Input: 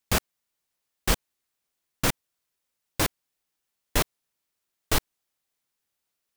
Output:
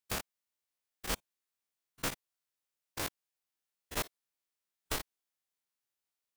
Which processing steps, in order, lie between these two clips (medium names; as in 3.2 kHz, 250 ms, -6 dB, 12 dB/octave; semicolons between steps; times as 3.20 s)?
spectrogram pixelated in time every 50 ms; bass shelf 260 Hz -6 dB; trim -7.5 dB